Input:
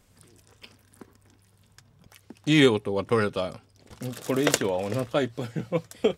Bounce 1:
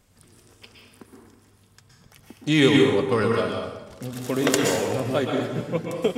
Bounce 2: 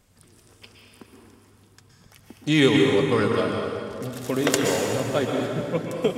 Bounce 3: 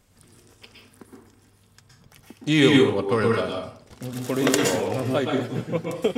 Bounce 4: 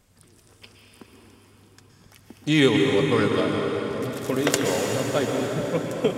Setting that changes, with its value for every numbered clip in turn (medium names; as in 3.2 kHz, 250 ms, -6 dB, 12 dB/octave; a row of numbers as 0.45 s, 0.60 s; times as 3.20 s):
plate-style reverb, RT60: 1.1 s, 2.5 s, 0.51 s, 5.2 s